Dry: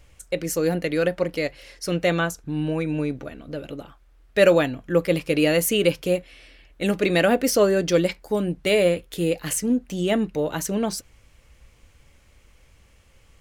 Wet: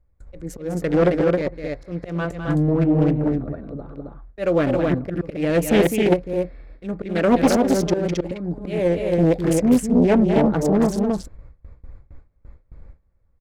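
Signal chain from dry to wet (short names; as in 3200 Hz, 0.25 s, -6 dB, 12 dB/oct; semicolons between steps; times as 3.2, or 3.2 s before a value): Wiener smoothing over 15 samples; auto swell 0.377 s; low shelf 450 Hz -3.5 dB; loudspeakers at several distances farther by 70 m -8 dB, 92 m -3 dB; gate with hold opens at -45 dBFS; tilt -2.5 dB/oct; Doppler distortion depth 0.61 ms; gain +4 dB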